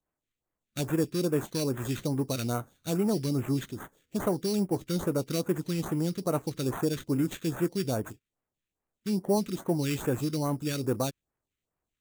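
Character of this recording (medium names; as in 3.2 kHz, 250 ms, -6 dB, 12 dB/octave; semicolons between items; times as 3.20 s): aliases and images of a low sample rate 5.1 kHz, jitter 0%; phasing stages 2, 2.4 Hz, lowest notch 750–4300 Hz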